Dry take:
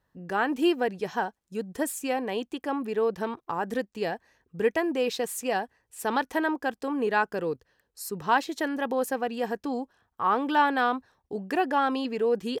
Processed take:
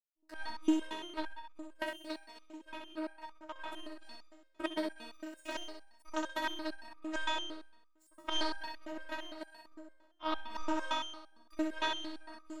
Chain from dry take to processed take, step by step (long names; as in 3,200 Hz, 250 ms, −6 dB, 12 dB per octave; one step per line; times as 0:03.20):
low-pass filter 11,000 Hz 24 dB per octave
in parallel at +2 dB: downward compressor, threshold −32 dBFS, peak gain reduction 14 dB
on the sum: power curve on the samples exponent 3
flutter between parallel walls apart 11 metres, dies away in 0.99 s
phases set to zero 315 Hz
step-sequenced resonator 8.8 Hz 68–1,200 Hz
level +10.5 dB